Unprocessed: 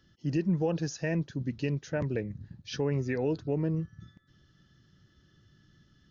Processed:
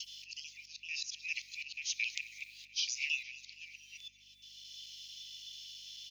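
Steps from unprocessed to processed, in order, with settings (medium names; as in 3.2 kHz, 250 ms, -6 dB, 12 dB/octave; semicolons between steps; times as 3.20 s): time reversed locally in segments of 221 ms; steep high-pass 2.3 kHz 96 dB/octave; dynamic bell 4.8 kHz, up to +5 dB, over -60 dBFS, Q 1.1; in parallel at -2 dB: compressor with a negative ratio -53 dBFS, ratio -1; on the sum: slow attack 735 ms; hum 50 Hz, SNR 33 dB; feedback delay 232 ms, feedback 60%, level -18 dB; on a send at -11.5 dB: reverberation RT60 1.5 s, pre-delay 4 ms; on the sum: trim +16.5 dB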